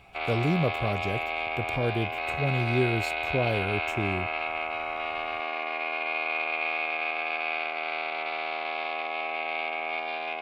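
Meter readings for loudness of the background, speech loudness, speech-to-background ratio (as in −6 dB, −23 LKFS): −30.0 LKFS, −30.5 LKFS, −0.5 dB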